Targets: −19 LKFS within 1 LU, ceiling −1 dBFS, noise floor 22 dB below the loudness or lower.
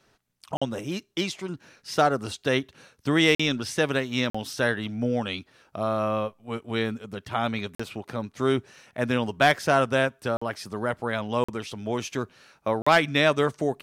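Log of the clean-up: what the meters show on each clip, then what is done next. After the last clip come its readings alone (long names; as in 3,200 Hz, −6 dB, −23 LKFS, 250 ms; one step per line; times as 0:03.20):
number of dropouts 7; longest dropout 45 ms; integrated loudness −26.0 LKFS; sample peak −9.0 dBFS; target loudness −19.0 LKFS
→ repair the gap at 0:00.57/0:03.35/0:04.30/0:07.75/0:10.37/0:11.44/0:12.82, 45 ms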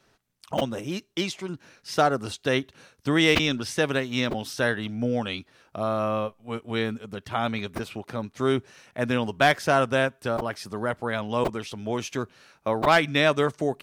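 number of dropouts 0; integrated loudness −26.0 LKFS; sample peak −9.0 dBFS; target loudness −19.0 LKFS
→ level +7 dB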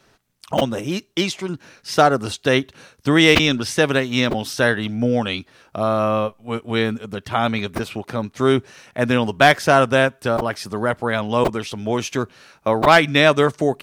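integrated loudness −19.0 LKFS; sample peak −2.0 dBFS; background noise floor −59 dBFS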